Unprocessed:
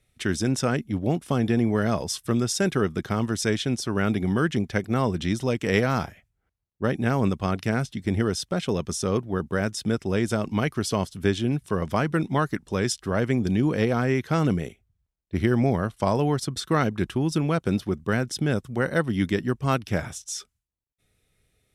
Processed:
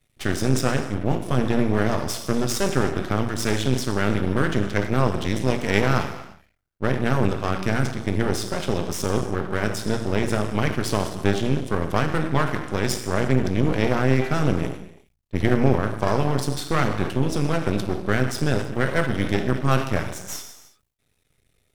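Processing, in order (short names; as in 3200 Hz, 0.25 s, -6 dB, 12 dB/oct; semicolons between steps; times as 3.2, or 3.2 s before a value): non-linear reverb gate 0.37 s falling, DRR 3 dB; half-wave rectifier; sustainer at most 130 dB/s; gain +3 dB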